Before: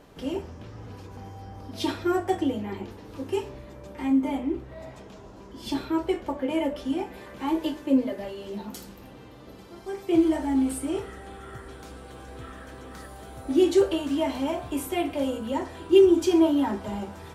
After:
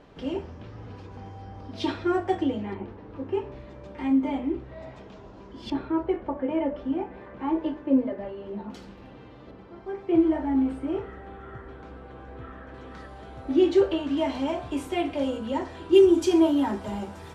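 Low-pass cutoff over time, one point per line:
4.2 kHz
from 2.74 s 1.9 kHz
from 3.52 s 4.1 kHz
from 5.70 s 1.7 kHz
from 8.70 s 3.4 kHz
from 9.51 s 2 kHz
from 12.74 s 3.6 kHz
from 14.17 s 5.9 kHz
from 15.94 s 11 kHz

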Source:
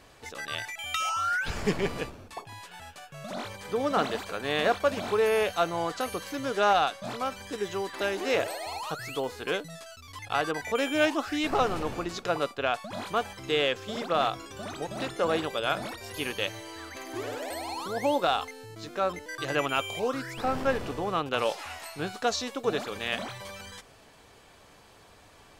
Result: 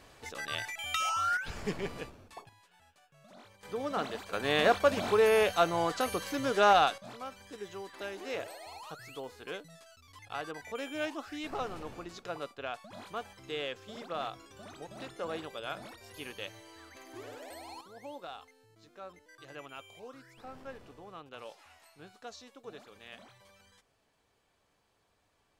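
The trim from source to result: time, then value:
-2 dB
from 1.37 s -8 dB
from 2.49 s -18.5 dB
from 3.63 s -7.5 dB
from 4.33 s 0 dB
from 6.98 s -11 dB
from 17.81 s -19 dB

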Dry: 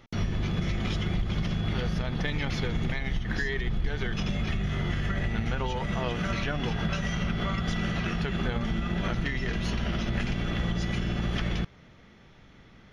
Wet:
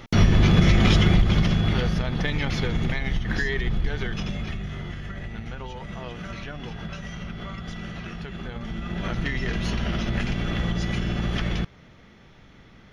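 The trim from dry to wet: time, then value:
0.96 s +12 dB
2.06 s +4 dB
3.78 s +4 dB
5.00 s -6 dB
8.48 s -6 dB
9.30 s +3 dB

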